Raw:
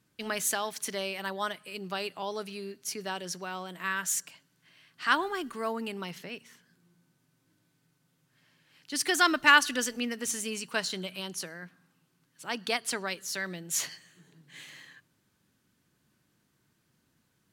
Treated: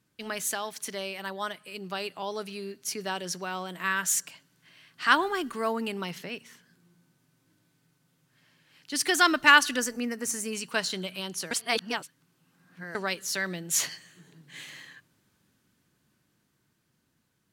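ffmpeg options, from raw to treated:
ffmpeg -i in.wav -filter_complex "[0:a]asettb=1/sr,asplit=3[link_01][link_02][link_03];[link_01]atrim=end=9.794[link_04];[link_02]atrim=start=9.79:end=10.53,asetpts=PTS-STARTPTS,afade=type=in:duration=0.004:curve=qsin,afade=type=out:start_time=0.736:duration=0.004:curve=qsin,equalizer=frequency=3300:width=2.1:gain=-12.5[link_05];[link_03]atrim=start=10.526[link_06];[link_04][link_05]acrossfade=duration=0.004:curve1=hsin:curve2=qsin[link_07];[link_07][link_06]acrossfade=duration=0.004:curve1=qsin:curve2=hsin,asplit=3[link_08][link_09][link_10];[link_08]atrim=end=11.512[link_11];[link_09]atrim=start=11.508:end=12.952,asetpts=PTS-STARTPTS,areverse[link_12];[link_10]atrim=start=12.948[link_13];[link_11][link_12]acrossfade=duration=0.004:curve1=hsin:curve2=hsin[link_14];[link_14][link_13]acrossfade=duration=0.004:curve1=hsin:curve2=hsin,dynaudnorm=framelen=730:gausssize=7:maxgain=6dB,volume=-1.5dB" out.wav

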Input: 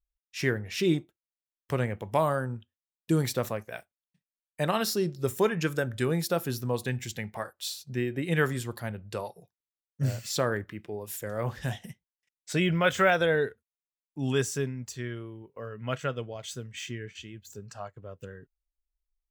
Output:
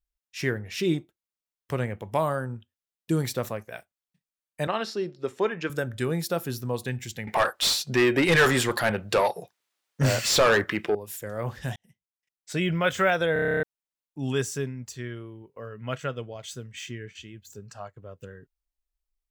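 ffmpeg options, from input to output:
ffmpeg -i in.wav -filter_complex "[0:a]asettb=1/sr,asplit=3[link_01][link_02][link_03];[link_01]atrim=end=4.674[link_04];[link_02]atrim=start=4.67:end=5.7,asetpts=PTS-STARTPTS,afade=type=in:duration=0.004:curve=qsin,afade=type=out:start_time=1.026:duration=0.004:curve=qsin,highpass=260,lowpass=3900[link_05];[link_03]atrim=start=5.696[link_06];[link_04][link_05]acrossfade=duration=0.004:curve1=hsin:curve2=qsin[link_07];[link_07][link_06]acrossfade=duration=0.004:curve1=qsin:curve2=hsin,asettb=1/sr,asplit=3[link_08][link_09][link_10];[link_08]atrim=end=7.274[link_11];[link_09]atrim=start=7.27:end=10.95,asetpts=PTS-STARTPTS,afade=type=in:duration=0.004:curve=qsin,afade=type=out:start_time=3.676:duration=0.004:curve=qsin,asplit=2[link_12][link_13];[link_13]highpass=frequency=720:poles=1,volume=27dB,asoftclip=type=tanh:threshold=-10.5dB[link_14];[link_12][link_14]amix=inputs=2:normalize=0,lowpass=frequency=4000:poles=1,volume=-6dB[link_15];[link_10]atrim=start=10.946[link_16];[link_11][link_15]acrossfade=duration=0.004:curve1=hsin:curve2=qsin[link_17];[link_17][link_16]acrossfade=duration=0.004:curve1=qsin:curve2=hsin,asplit=12[link_18][link_19][link_20][link_21][link_22][link_23][link_24][link_25][link_26][link_27][link_28][link_29];[link_18]atrim=end=11.76,asetpts=PTS-STARTPTS,afade=type=out:start_time=11.756:duration=0.004:curve=hsin[link_30];[link_19]atrim=start=11.76:end=13.362,asetpts=PTS-STARTPTS,afade=type=in:duration=0.92[link_31];[link_20]atrim=start=13.328:end=13.362[link_32];[link_21]atrim=start=13.328:end=13.362[link_33];[link_22]atrim=start=13.328:end=13.362[link_34];[link_23]atrim=start=13.328:end=13.362[link_35];[link_24]atrim=start=13.328:end=13.362[link_36];[link_25]atrim=start=13.328:end=13.362[link_37];[link_26]atrim=start=13.328:end=13.362[link_38];[link_27]atrim=start=13.328:end=13.362[link_39];[link_28]atrim=start=13.328:end=13.362[link_40];[link_29]atrim=start=13.628[link_41];[link_30][link_31]concat=n=2:v=0:a=1[link_42];[link_42][link_32]acrossfade=duration=0.004:curve1=hsin:curve2=hsin[link_43];[link_43][link_33]acrossfade=duration=0.004:curve1=hsin:curve2=hsin[link_44];[link_44][link_34]acrossfade=duration=0.004:curve1=hsin:curve2=hsin[link_45];[link_45][link_35]acrossfade=duration=0.004:curve1=hsin:curve2=hsin[link_46];[link_46][link_36]acrossfade=duration=0.004:curve1=hsin:curve2=hsin[link_47];[link_47][link_37]acrossfade=duration=0.004:curve1=hsin:curve2=hsin[link_48];[link_48][link_38]acrossfade=duration=0.004:curve1=hsin:curve2=hsin[link_49];[link_49][link_39]acrossfade=duration=0.004:curve1=hsin:curve2=hsin[link_50];[link_50][link_40]acrossfade=duration=0.004:curve1=hsin:curve2=hsin[link_51];[link_51][link_41]acrossfade=duration=0.004:curve1=hsin:curve2=hsin" out.wav

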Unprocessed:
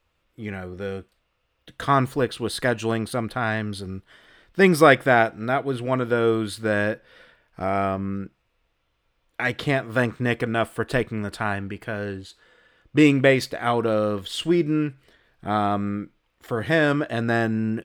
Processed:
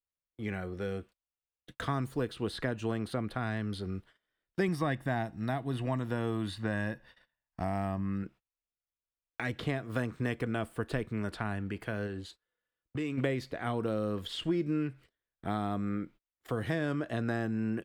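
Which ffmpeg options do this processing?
ffmpeg -i in.wav -filter_complex "[0:a]asettb=1/sr,asplit=3[link_01][link_02][link_03];[link_01]atrim=end=4.684[link_04];[link_02]atrim=start=4.68:end=8.23,asetpts=PTS-STARTPTS,afade=type=in:duration=0.004:curve=qsin,afade=type=out:start_time=3.546:duration=0.004:curve=qsin,aecho=1:1:1.1:0.57,atrim=end_sample=156555[link_05];[link_03]atrim=start=8.226[link_06];[link_04][link_05]acrossfade=duration=0.004:curve1=hsin:curve2=qsin[link_07];[link_07][link_06]acrossfade=duration=0.004:curve1=qsin:curve2=hsin,asplit=3[link_08][link_09][link_10];[link_08]afade=type=out:start_time=12.06:duration=0.02[link_11];[link_09]acompressor=threshold=-30dB:ratio=4:attack=3.2:release=140:knee=1:detection=peak,afade=type=in:start_time=12.06:duration=0.02,afade=type=out:start_time=13.17:duration=0.02[link_12];[link_10]afade=type=in:start_time=13.17:duration=0.02[link_13];[link_11][link_12][link_13]amix=inputs=3:normalize=0,agate=range=-29dB:threshold=-46dB:ratio=16:detection=peak,acrossover=split=330|4600[link_14][link_15][link_16];[link_14]acompressor=threshold=-28dB:ratio=4[link_17];[link_15]acompressor=threshold=-32dB:ratio=4[link_18];[link_16]acompressor=threshold=-51dB:ratio=4[link_19];[link_17][link_18][link_19]amix=inputs=3:normalize=0,adynamicequalizer=threshold=0.00708:dfrequency=2400:dqfactor=0.7:tfrequency=2400:tqfactor=0.7:attack=5:release=100:ratio=0.375:range=2:mode=cutabove:tftype=highshelf,volume=-3.5dB" out.wav

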